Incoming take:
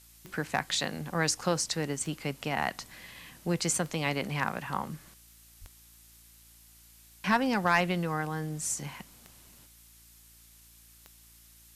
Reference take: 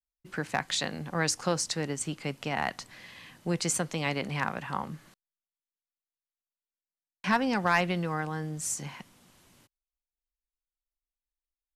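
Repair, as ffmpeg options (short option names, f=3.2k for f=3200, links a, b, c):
-filter_complex "[0:a]adeclick=t=4,bandreject=f=56.9:t=h:w=4,bandreject=f=113.8:t=h:w=4,bandreject=f=170.7:t=h:w=4,bandreject=f=227.6:t=h:w=4,bandreject=f=284.5:t=h:w=4,bandreject=f=341.4:t=h:w=4,asplit=3[a][b][c];[a]afade=t=out:st=5.6:d=0.02[d];[b]highpass=f=140:w=0.5412,highpass=f=140:w=1.3066,afade=t=in:st=5.6:d=0.02,afade=t=out:st=5.72:d=0.02[e];[c]afade=t=in:st=5.72:d=0.02[f];[d][e][f]amix=inputs=3:normalize=0,afftdn=nr=30:nf=-57"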